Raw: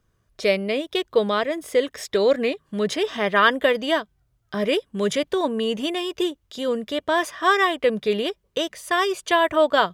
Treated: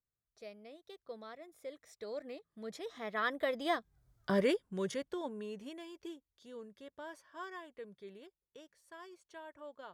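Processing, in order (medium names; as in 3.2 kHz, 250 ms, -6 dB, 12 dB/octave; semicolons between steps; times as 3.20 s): Doppler pass-by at 4.15 s, 20 m/s, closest 3.3 m; peaking EQ 2.8 kHz -7.5 dB 0.44 oct; trim -1.5 dB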